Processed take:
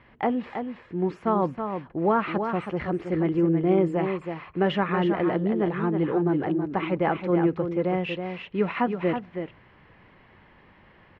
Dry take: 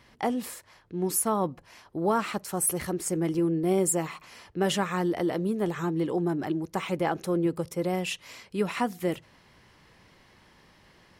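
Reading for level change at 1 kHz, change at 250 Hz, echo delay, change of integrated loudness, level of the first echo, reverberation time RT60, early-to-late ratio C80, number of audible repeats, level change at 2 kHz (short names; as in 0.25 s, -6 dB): +4.0 dB, +4.0 dB, 0.323 s, +2.5 dB, -7.0 dB, none, none, 1, +3.5 dB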